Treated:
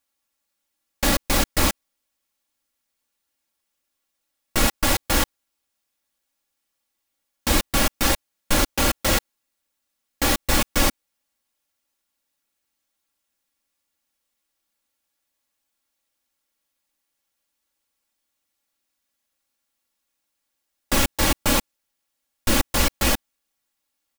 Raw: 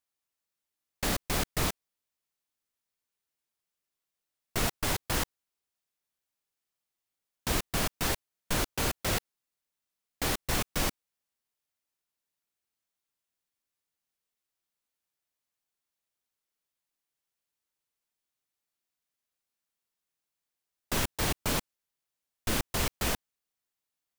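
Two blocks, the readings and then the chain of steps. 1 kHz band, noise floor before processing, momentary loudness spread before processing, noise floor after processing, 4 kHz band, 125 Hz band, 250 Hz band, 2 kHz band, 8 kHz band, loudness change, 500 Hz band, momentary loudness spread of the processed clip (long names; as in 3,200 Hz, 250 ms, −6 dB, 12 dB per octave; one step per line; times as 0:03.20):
+9.5 dB, below −85 dBFS, 5 LU, −79 dBFS, +9.5 dB, +6.5 dB, +10.5 dB, +9.5 dB, +9.5 dB, +9.5 dB, +9.0 dB, 5 LU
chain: comb filter 3.6 ms
level +8 dB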